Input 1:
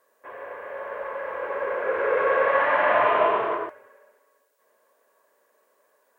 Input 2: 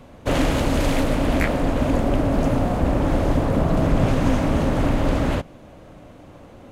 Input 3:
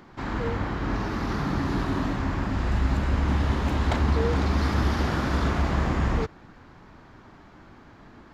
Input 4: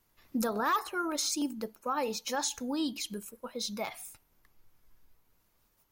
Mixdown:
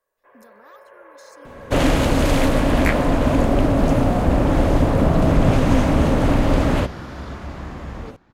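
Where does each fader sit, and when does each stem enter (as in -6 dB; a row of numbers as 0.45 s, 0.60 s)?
-13.0 dB, +3.0 dB, -8.5 dB, -20.0 dB; 0.00 s, 1.45 s, 1.85 s, 0.00 s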